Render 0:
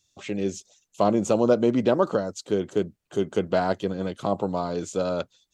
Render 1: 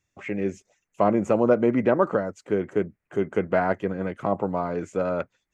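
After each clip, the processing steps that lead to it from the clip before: resonant high shelf 2.8 kHz -10.5 dB, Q 3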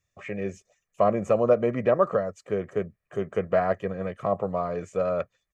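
comb 1.7 ms, depth 61%; trim -3 dB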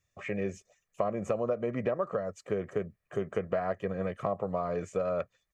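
compression 6:1, threshold -27 dBFS, peak gain reduction 12 dB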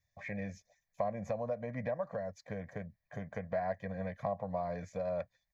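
static phaser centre 1.9 kHz, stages 8; trim -1.5 dB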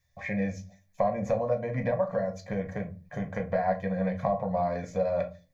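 simulated room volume 150 m³, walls furnished, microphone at 0.96 m; trim +6.5 dB

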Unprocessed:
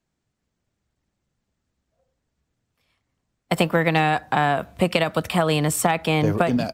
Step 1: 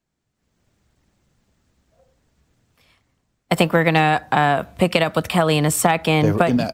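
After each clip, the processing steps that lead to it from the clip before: level rider gain up to 13 dB; trim -1 dB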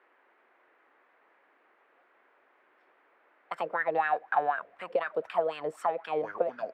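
bass shelf 220 Hz -10.5 dB; wah-wah 4 Hz 430–1600 Hz, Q 6.7; band noise 310–2000 Hz -66 dBFS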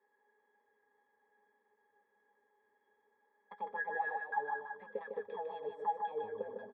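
pitch-class resonator G#, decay 0.11 s; on a send: multi-tap echo 123/153/331 ms -14/-5/-12.5 dB; on the sum: trim +1.5 dB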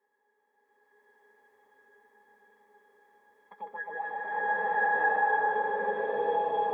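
swelling reverb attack 1070 ms, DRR -11.5 dB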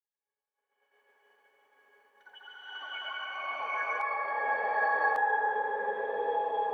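ever faster or slower copies 117 ms, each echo +5 st, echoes 2, each echo -6 dB; expander -59 dBFS; peaking EQ 170 Hz -13 dB 1.1 oct; trim -1.5 dB

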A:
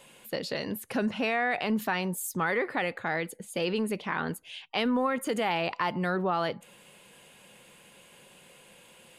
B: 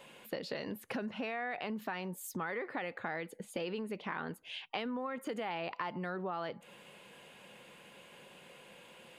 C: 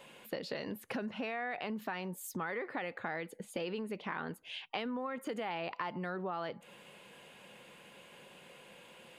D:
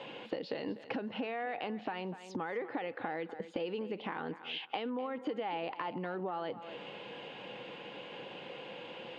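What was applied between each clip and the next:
peaking EQ 9.9 kHz -11 dB 1.7 oct; compression 5:1, threshold -37 dBFS, peak gain reduction 12.5 dB; bass shelf 110 Hz -9 dB; trim +1.5 dB
no audible change
cabinet simulation 120–4600 Hz, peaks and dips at 120 Hz +8 dB, 300 Hz +10 dB, 480 Hz +7 dB, 810 Hz +7 dB, 3 kHz +4 dB; thinning echo 247 ms, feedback 18%, high-pass 220 Hz, level -16 dB; compression 2.5:1, threshold -45 dBFS, peak gain reduction 12 dB; trim +6 dB

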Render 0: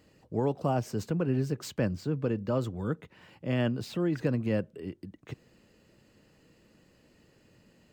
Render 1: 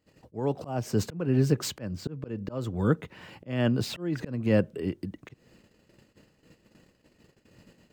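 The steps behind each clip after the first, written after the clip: gate -60 dBFS, range -22 dB; slow attack 364 ms; trim +8 dB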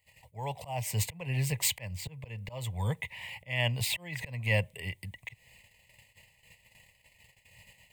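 FFT filter 110 Hz 0 dB, 320 Hz -26 dB, 540 Hz -7 dB, 970 Hz +3 dB, 1.4 kHz -26 dB, 2 kHz +13 dB, 5.7 kHz -2 dB, 8.4 kHz +11 dB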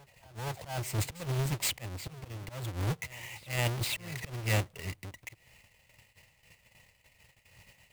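square wave that keeps the level; reverse echo 473 ms -21.5 dB; trim -5.5 dB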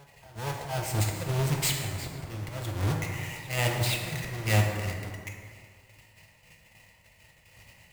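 plate-style reverb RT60 1.9 s, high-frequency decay 0.5×, DRR 0.5 dB; trim +2.5 dB

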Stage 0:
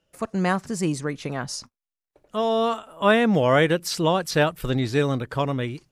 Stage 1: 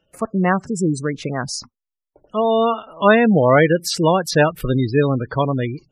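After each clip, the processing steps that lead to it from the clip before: spectral gate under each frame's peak -20 dB strong; trim +5.5 dB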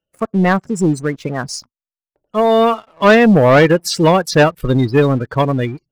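waveshaping leveller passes 2; upward expansion 1.5:1, over -30 dBFS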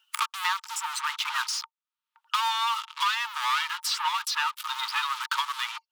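in parallel at -5 dB: fuzz box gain 41 dB, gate -42 dBFS; on the sum: rippled Chebyshev high-pass 880 Hz, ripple 9 dB; three bands compressed up and down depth 100%; trim -6 dB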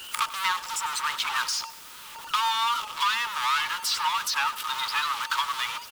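jump at every zero crossing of -35 dBFS; feedback delay 96 ms, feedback 42%, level -17 dB; warped record 78 rpm, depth 100 cents

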